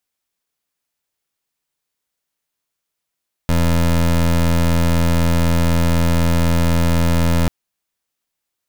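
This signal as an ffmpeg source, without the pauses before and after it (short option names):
-f lavfi -i "aevalsrc='0.188*(2*lt(mod(84*t,1),0.22)-1)':d=3.99:s=44100"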